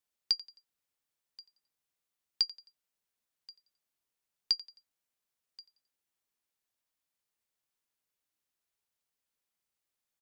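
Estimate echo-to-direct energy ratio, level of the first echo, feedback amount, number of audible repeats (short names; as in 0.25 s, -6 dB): -18.5 dB, -19.0 dB, 38%, 2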